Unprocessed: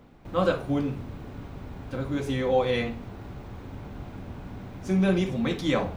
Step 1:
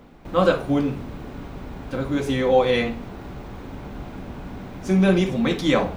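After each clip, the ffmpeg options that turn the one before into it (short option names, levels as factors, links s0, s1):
-af "equalizer=f=100:w=2.2:g=-8.5,volume=2"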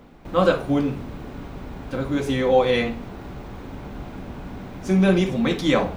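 -af anull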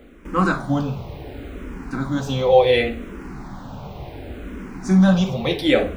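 -filter_complex "[0:a]asplit=2[s0][s1];[s1]afreqshift=-0.69[s2];[s0][s2]amix=inputs=2:normalize=1,volume=1.68"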